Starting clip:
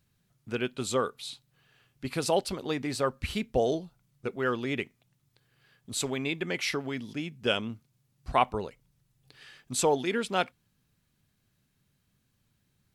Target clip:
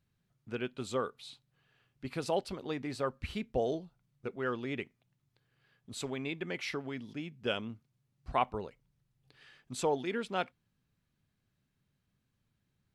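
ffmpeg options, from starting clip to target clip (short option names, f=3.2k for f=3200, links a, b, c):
-af "highshelf=f=5.6k:g=-10.5,volume=-5.5dB"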